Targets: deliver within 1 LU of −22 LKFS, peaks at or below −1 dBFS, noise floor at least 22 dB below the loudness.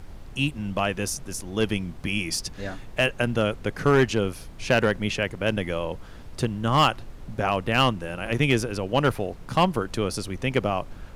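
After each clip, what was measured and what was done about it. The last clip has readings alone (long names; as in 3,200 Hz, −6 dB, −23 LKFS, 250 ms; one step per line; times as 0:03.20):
share of clipped samples 0.3%; peaks flattened at −11.5 dBFS; background noise floor −42 dBFS; target noise floor −48 dBFS; integrated loudness −25.5 LKFS; sample peak −11.5 dBFS; target loudness −22.0 LKFS
→ clipped peaks rebuilt −11.5 dBFS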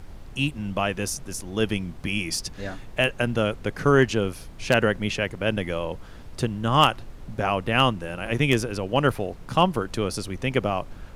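share of clipped samples 0.0%; background noise floor −42 dBFS; target noise floor −47 dBFS
→ noise reduction from a noise print 6 dB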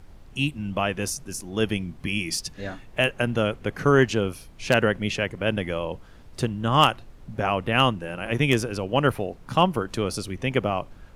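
background noise floor −47 dBFS; integrated loudness −25.0 LKFS; sample peak −2.5 dBFS; target loudness −22.0 LKFS
→ level +3 dB
brickwall limiter −1 dBFS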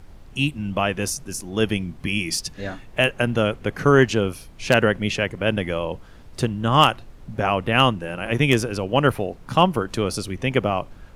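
integrated loudness −22.0 LKFS; sample peak −1.0 dBFS; background noise floor −44 dBFS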